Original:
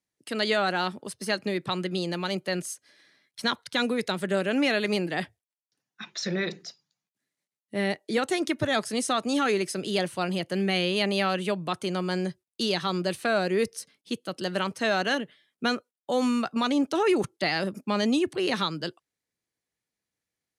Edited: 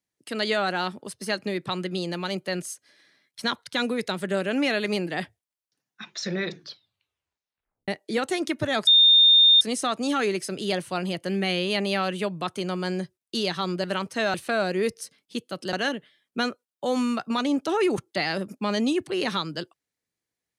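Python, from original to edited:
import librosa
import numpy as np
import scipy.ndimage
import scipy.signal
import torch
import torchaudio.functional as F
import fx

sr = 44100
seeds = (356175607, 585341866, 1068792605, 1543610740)

y = fx.edit(x, sr, fx.tape_stop(start_s=6.48, length_s=1.4),
    fx.insert_tone(at_s=8.87, length_s=0.74, hz=3640.0, db=-12.0),
    fx.move(start_s=14.49, length_s=0.5, to_s=13.1), tone=tone)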